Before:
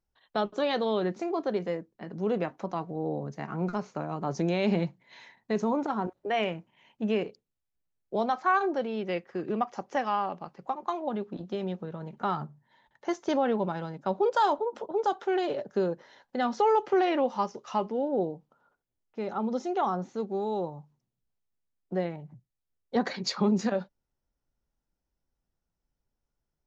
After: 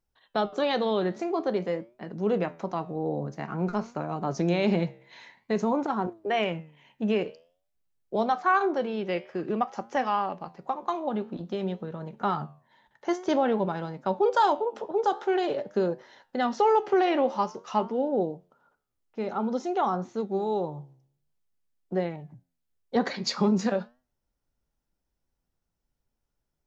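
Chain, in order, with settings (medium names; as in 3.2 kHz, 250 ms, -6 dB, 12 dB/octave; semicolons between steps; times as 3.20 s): flange 0.5 Hz, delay 7.7 ms, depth 7.6 ms, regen +85%; trim +6.5 dB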